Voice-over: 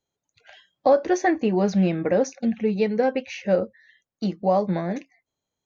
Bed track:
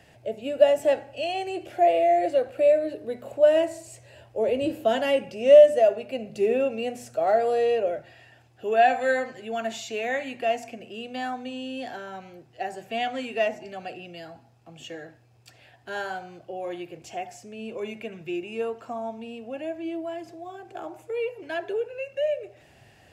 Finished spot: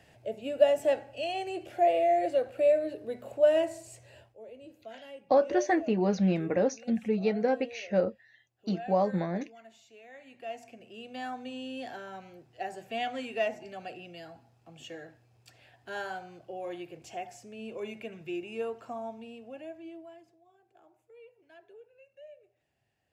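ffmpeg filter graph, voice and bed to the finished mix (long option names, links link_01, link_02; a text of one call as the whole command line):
ffmpeg -i stem1.wav -i stem2.wav -filter_complex "[0:a]adelay=4450,volume=-5.5dB[link_01];[1:a]volume=14dB,afade=type=out:start_time=4.17:duration=0.2:silence=0.112202,afade=type=in:start_time=10.13:duration=1.4:silence=0.11885,afade=type=out:start_time=18.89:duration=1.51:silence=0.105925[link_02];[link_01][link_02]amix=inputs=2:normalize=0" out.wav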